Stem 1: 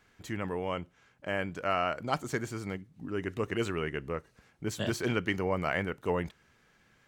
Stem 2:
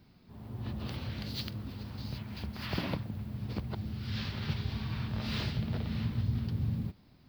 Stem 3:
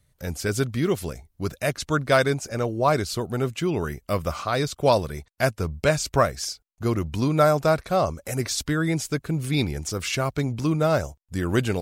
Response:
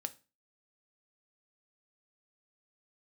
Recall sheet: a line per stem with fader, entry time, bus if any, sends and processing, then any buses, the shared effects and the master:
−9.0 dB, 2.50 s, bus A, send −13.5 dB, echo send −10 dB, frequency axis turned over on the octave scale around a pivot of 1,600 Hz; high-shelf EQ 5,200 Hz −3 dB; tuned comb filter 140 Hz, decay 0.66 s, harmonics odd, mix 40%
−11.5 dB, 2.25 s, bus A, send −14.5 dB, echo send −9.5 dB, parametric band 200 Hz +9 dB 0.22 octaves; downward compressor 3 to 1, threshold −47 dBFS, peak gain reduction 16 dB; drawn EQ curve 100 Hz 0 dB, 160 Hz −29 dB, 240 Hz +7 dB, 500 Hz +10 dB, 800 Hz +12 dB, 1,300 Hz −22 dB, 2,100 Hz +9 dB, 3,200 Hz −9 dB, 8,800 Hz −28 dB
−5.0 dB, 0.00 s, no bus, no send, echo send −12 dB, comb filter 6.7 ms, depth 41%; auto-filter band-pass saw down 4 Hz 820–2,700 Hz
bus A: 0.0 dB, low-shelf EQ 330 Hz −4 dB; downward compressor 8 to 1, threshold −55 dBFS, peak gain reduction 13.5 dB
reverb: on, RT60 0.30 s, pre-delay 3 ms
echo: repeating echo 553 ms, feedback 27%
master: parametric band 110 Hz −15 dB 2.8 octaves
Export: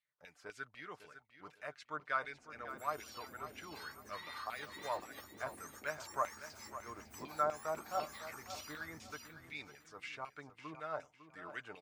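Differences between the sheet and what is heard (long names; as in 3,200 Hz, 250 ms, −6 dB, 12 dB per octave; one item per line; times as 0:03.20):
stem 1: missing tuned comb filter 140 Hz, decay 0.66 s, harmonics odd, mix 40%
stem 3 −5.0 dB → −11.5 dB
master: missing parametric band 110 Hz −15 dB 2.8 octaves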